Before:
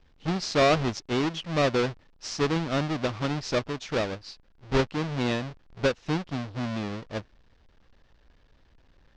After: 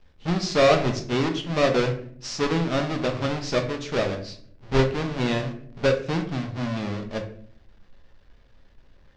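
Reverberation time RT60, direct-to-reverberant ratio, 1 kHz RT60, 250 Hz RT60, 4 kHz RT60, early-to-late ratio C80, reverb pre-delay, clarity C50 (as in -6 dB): 0.55 s, 3.5 dB, 0.45 s, 0.95 s, 0.35 s, 13.5 dB, 5 ms, 10.0 dB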